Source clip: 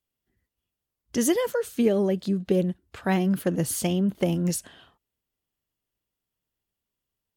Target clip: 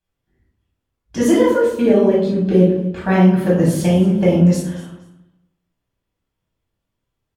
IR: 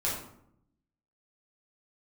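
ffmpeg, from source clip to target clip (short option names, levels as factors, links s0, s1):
-filter_complex "[0:a]aemphasis=mode=reproduction:type=50kf,aecho=1:1:236|472:0.133|0.028[s0];[1:a]atrim=start_sample=2205[s1];[s0][s1]afir=irnorm=-1:irlink=0,volume=1.33"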